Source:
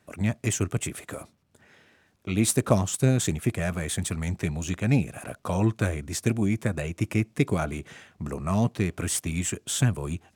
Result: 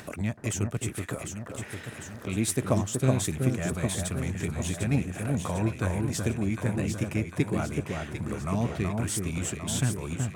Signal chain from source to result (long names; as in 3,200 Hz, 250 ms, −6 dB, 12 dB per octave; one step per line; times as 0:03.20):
upward compression, threshold −24 dBFS
delay that swaps between a low-pass and a high-pass 375 ms, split 1,500 Hz, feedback 74%, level −3.5 dB
level −4.5 dB